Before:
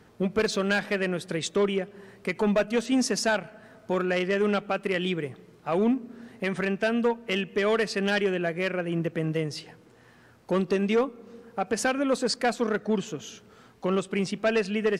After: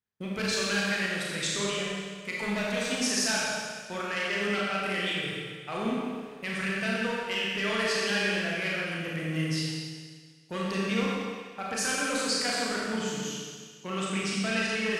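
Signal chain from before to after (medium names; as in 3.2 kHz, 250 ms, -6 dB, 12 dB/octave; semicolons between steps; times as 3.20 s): amplifier tone stack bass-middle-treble 5-5-5; filtered feedback delay 133 ms, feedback 34%, level -7 dB; expander -50 dBFS; in parallel at +1.5 dB: peak limiter -31 dBFS, peak gain reduction 8 dB; on the sum: Schroeder reverb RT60 1.7 s, combs from 28 ms, DRR -4.5 dB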